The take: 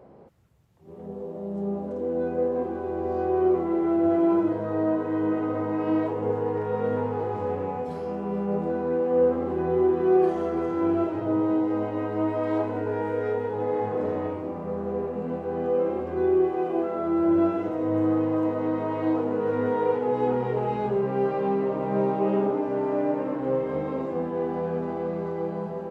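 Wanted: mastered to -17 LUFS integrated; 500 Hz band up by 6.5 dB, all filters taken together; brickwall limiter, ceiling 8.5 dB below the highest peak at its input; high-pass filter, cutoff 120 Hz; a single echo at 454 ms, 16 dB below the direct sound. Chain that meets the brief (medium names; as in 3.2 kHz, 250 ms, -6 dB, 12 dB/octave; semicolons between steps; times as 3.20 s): high-pass 120 Hz; peaking EQ 500 Hz +8 dB; peak limiter -13.5 dBFS; delay 454 ms -16 dB; trim +5.5 dB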